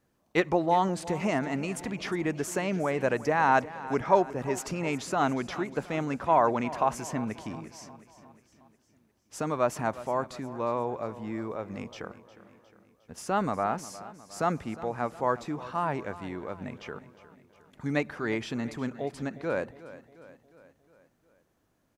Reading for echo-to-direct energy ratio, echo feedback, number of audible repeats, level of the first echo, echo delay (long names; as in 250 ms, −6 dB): −15.0 dB, 55%, 4, −16.5 dB, 358 ms